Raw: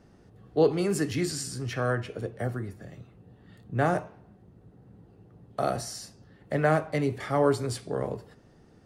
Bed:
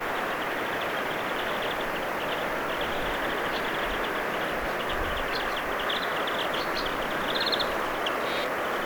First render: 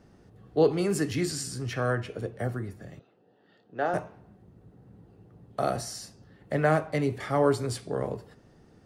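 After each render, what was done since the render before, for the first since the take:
0:02.99–0:03.94: loudspeaker in its box 420–4,900 Hz, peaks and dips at 1,100 Hz −8 dB, 2,200 Hz −10 dB, 3,800 Hz −4 dB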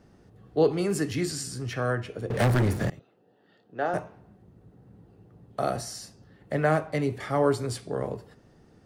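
0:02.30–0:02.90: leveller curve on the samples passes 5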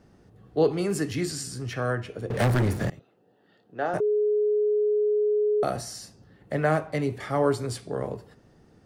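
0:04.00–0:05.63: beep over 420 Hz −20 dBFS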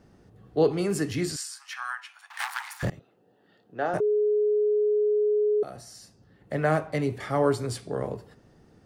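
0:01.36–0:02.83: Butterworth high-pass 840 Hz 72 dB per octave
0:05.63–0:06.78: fade in, from −15 dB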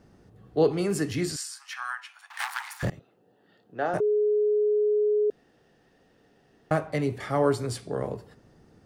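0:05.30–0:06.71: fill with room tone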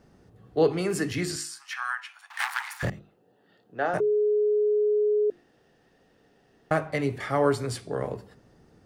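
mains-hum notches 50/100/150/200/250/300/350 Hz
dynamic equaliser 1,900 Hz, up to +4 dB, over −45 dBFS, Q 0.97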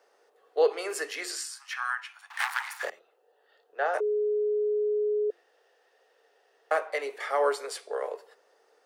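Chebyshev high-pass filter 450 Hz, order 4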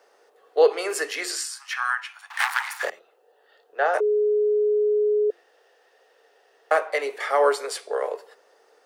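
level +6 dB

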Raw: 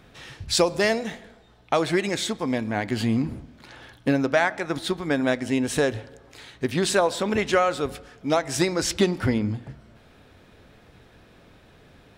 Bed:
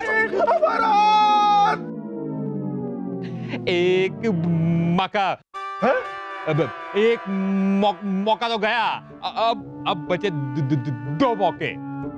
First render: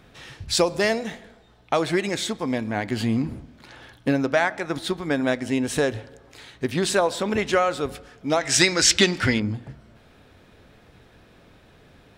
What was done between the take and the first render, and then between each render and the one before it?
0:08.41–0:09.40: flat-topped bell 3,500 Hz +10.5 dB 2.8 octaves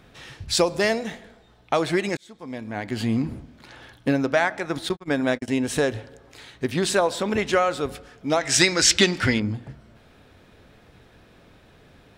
0:02.17–0:03.15: fade in
0:04.89–0:05.48: noise gate −30 dBFS, range −58 dB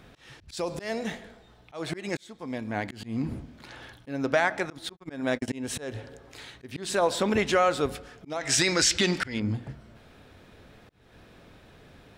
brickwall limiter −12.5 dBFS, peak gain reduction 9.5 dB
volume swells 299 ms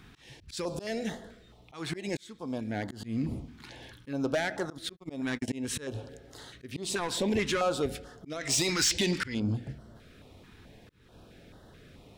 soft clipping −20 dBFS, distortion −13 dB
notch on a step sequencer 4.6 Hz 580–2,400 Hz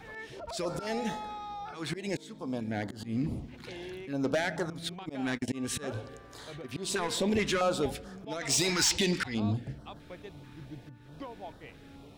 mix in bed −24 dB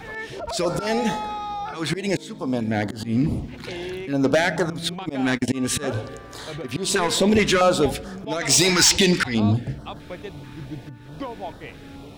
level +10.5 dB

